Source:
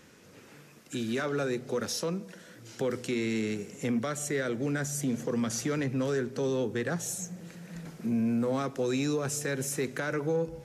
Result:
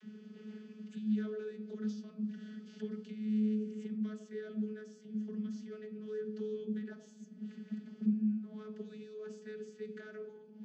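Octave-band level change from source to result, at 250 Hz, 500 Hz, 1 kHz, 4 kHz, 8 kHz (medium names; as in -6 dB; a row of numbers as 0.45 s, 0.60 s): -5.0 dB, -12.0 dB, under -20 dB, under -20 dB, under -30 dB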